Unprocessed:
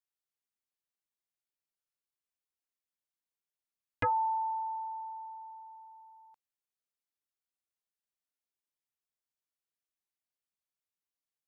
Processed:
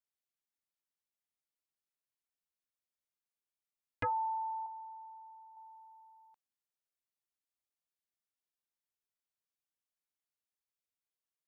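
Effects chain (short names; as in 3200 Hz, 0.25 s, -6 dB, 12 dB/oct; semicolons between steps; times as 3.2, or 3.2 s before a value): 4.66–5.57 rippled Chebyshev low-pass 1100 Hz, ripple 6 dB; gain -4.5 dB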